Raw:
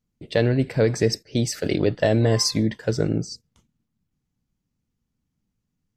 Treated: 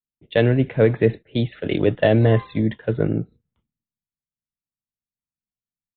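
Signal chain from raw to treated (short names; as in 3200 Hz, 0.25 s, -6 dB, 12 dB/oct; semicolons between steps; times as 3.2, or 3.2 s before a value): downsampling 8000 Hz; three-band expander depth 70%; gain +2.5 dB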